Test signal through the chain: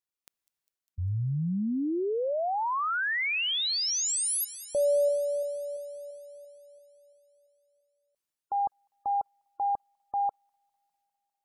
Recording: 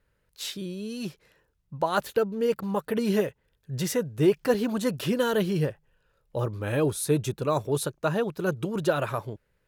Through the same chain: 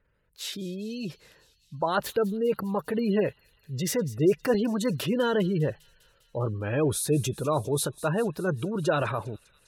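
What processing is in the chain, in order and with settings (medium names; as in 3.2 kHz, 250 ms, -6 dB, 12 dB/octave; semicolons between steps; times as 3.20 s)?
transient shaper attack -2 dB, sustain +5 dB; spectral gate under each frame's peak -30 dB strong; feedback echo behind a high-pass 201 ms, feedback 72%, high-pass 3.9 kHz, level -16 dB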